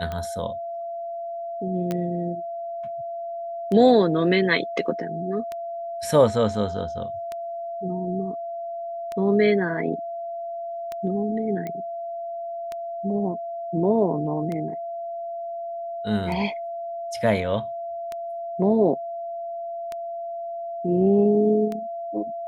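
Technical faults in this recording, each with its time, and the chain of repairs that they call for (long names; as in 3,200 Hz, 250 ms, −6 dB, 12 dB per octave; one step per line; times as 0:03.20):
scratch tick 33 1/3 rpm −18 dBFS
whistle 680 Hz −29 dBFS
0:01.91: click −14 dBFS
0:11.67: click −19 dBFS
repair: click removal
notch filter 680 Hz, Q 30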